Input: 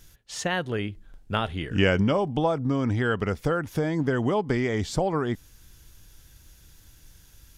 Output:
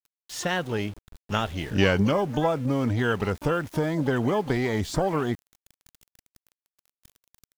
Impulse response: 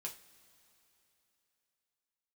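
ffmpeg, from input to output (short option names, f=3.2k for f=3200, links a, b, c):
-filter_complex "[0:a]asplit=2[a][b];[b]asetrate=88200,aresample=44100,atempo=0.5,volume=-14dB[c];[a][c]amix=inputs=2:normalize=0,aeval=exprs='val(0)*gte(abs(val(0)),0.00841)':c=same"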